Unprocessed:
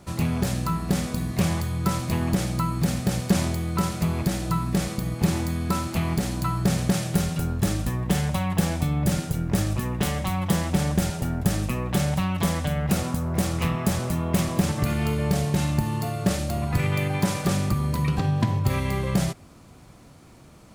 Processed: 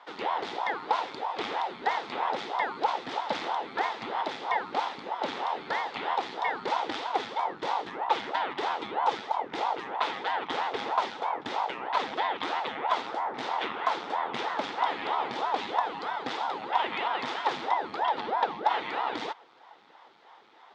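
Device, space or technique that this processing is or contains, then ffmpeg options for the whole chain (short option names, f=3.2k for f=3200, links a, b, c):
voice changer toy: -af "aeval=exprs='val(0)*sin(2*PI*460*n/s+460*0.9/3.1*sin(2*PI*3.1*n/s))':c=same,highpass=490,equalizer=f=600:t=q:w=4:g=-7,equalizer=f=860:t=q:w=4:g=7,equalizer=f=1.3k:t=q:w=4:g=4,equalizer=f=2k:t=q:w=4:g=5,equalizer=f=3.5k:t=q:w=4:g=8,lowpass=f=4.5k:w=0.5412,lowpass=f=4.5k:w=1.3066,volume=-2.5dB"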